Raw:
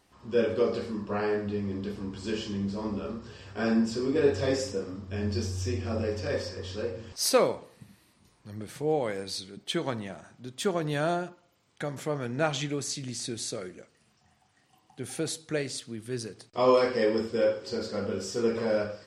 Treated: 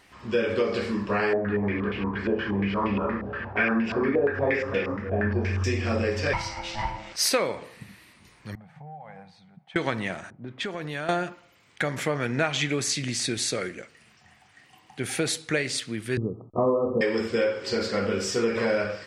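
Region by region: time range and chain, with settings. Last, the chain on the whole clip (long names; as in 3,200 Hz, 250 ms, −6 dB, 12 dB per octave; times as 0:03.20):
0:01.33–0:05.64: single-tap delay 299 ms −13 dB + low-pass on a step sequencer 8.5 Hz 690–2,700 Hz
0:06.33–0:07.15: high-pass filter 180 Hz 6 dB per octave + ring modulation 430 Hz
0:08.55–0:09.76: pair of resonant band-passes 350 Hz, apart 2.3 octaves + downward compressor, threshold −46 dBFS
0:10.30–0:11.09: low-pass that shuts in the quiet parts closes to 460 Hz, open at −28 dBFS + downward compressor 4 to 1, threshold −38 dBFS
0:16.17–0:17.01: Chebyshev low-pass filter 1,300 Hz, order 10 + tilt shelving filter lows +8.5 dB, about 700 Hz
whole clip: parametric band 2,100 Hz +10 dB 1.2 octaves; downward compressor 5 to 1, threshold −27 dBFS; level +6 dB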